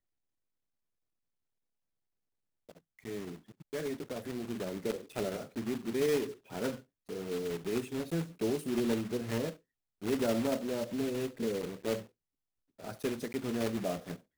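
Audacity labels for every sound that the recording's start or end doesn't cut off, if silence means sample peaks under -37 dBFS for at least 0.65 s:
3.050000	12.020000	sound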